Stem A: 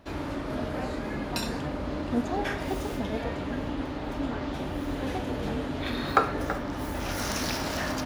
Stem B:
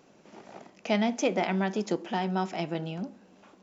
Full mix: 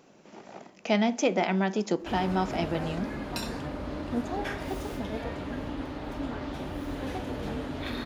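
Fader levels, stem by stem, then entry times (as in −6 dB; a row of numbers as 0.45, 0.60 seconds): −3.0, +1.5 decibels; 2.00, 0.00 seconds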